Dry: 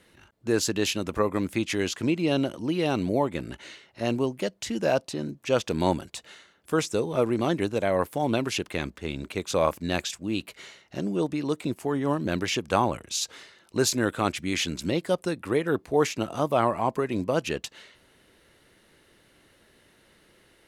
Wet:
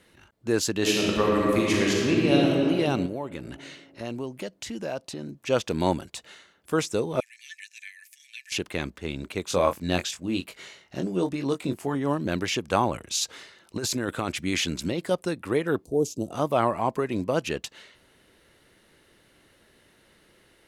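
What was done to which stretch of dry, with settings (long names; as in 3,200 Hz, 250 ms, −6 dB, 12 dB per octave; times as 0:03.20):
0:00.77–0:02.53: thrown reverb, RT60 2.3 s, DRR −3.5 dB
0:03.06–0:05.34: downward compressor 2 to 1, threshold −34 dBFS
0:07.20–0:08.52: Chebyshev high-pass with heavy ripple 1,700 Hz, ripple 9 dB
0:09.45–0:11.95: double-tracking delay 22 ms −6.5 dB
0:12.94–0:15.11: compressor whose output falls as the input rises −27 dBFS
0:15.85–0:16.31: Chebyshev band-stop filter 430–6,600 Hz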